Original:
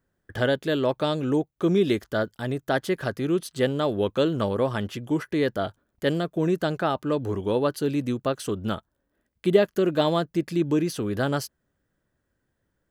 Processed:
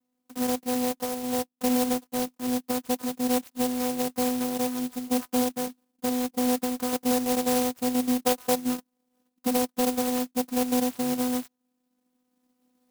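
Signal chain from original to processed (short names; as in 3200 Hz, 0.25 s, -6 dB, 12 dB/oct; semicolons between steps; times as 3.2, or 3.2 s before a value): recorder AGC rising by 7.4 dB/s; 6.92–7.62 bell 570 Hz +9 dB 2.3 oct; hard clip -18 dBFS, distortion -11 dB; vocoder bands 4, saw 250 Hz; 0.91–1.52 bell 240 Hz -6.5 dB 0.42 oct; 8.26–8.57 spectral gain 470–1600 Hz +8 dB; clock jitter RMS 0.14 ms; gain -2 dB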